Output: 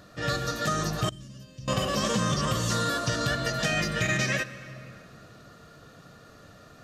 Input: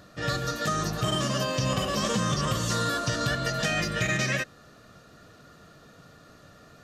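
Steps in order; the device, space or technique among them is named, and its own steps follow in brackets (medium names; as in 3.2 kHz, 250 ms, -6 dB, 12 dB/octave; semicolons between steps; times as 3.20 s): compressed reverb return (on a send at -5 dB: reverberation RT60 1.8 s, pre-delay 51 ms + compression 5:1, threshold -34 dBFS, peak gain reduction 12 dB); 1.09–1.68 s: on the sum: amplifier tone stack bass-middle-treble 10-0-1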